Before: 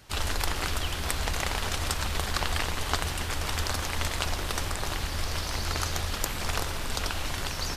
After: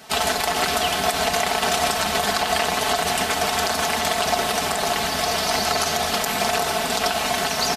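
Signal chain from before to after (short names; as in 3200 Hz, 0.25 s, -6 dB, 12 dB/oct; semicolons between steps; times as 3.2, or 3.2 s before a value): HPF 160 Hz 12 dB/oct; bell 720 Hz +14.5 dB 0.21 oct; comb 4.6 ms, depth 75%; limiter -18 dBFS, peak gain reduction 10.5 dB; gain +9 dB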